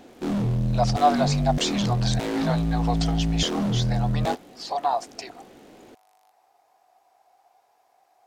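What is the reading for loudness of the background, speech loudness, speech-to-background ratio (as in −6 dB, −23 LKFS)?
−25.5 LKFS, −28.0 LKFS, −2.5 dB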